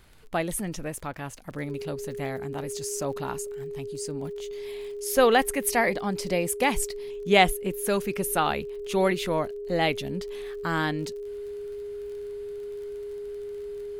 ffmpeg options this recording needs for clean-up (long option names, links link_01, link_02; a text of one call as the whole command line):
ffmpeg -i in.wav -af "adeclick=threshold=4,bandreject=frequency=410:width=30" out.wav